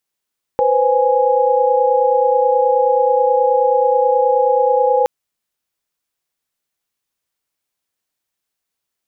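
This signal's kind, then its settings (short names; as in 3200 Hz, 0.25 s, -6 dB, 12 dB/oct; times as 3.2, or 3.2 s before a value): chord B4/C5/G#5 sine, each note -15.5 dBFS 4.47 s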